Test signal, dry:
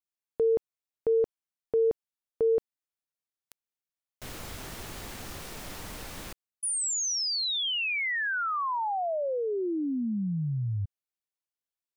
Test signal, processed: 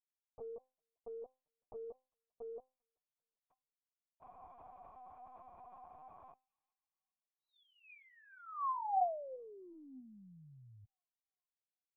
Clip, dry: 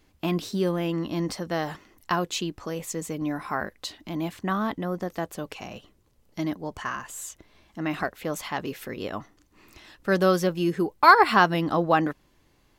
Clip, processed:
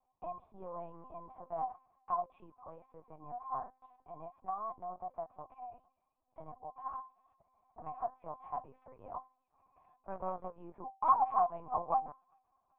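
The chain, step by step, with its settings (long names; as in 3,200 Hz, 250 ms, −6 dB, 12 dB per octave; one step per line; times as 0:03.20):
soft clipping −13 dBFS
formant resonators in series a
tuned comb filter 260 Hz, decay 0.28 s, harmonics all, mix 60%
on a send: delay with a high-pass on its return 393 ms, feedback 42%, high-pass 2,900 Hz, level −18 dB
on the sum: linear-prediction vocoder at 8 kHz pitch kept
level +7 dB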